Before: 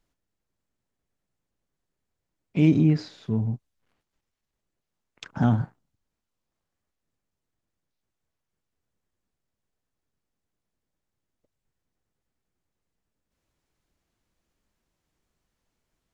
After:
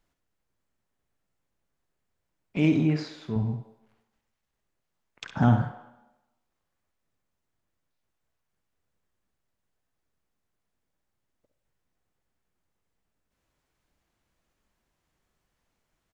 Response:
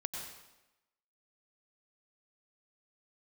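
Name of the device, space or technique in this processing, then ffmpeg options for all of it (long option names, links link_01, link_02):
filtered reverb send: -filter_complex "[0:a]asplit=2[link_01][link_02];[link_02]highpass=480,lowpass=3300[link_03];[1:a]atrim=start_sample=2205[link_04];[link_03][link_04]afir=irnorm=-1:irlink=0,volume=-6.5dB[link_05];[link_01][link_05]amix=inputs=2:normalize=0,asettb=1/sr,asplit=3[link_06][link_07][link_08];[link_06]atrim=end=2.574[link_09];[link_07]atrim=start=2.57:end=3.36,asetpts=PTS-STARTPTS,afade=type=in:duration=0.004:curve=qsin,afade=type=out:start_time=0.786:duration=0.004:curve=qsin,lowshelf=frequency=200:gain=-9.5[link_10];[link_08]atrim=start=3.356[link_11];[link_09][link_10]acrossfade=duration=0.004:curve1=hsin:curve2=qsin[link_12];[link_12][link_11]acrossfade=duration=0.004:curve1=qsin:curve2=hsin,aecho=1:1:51|66:0.168|0.335"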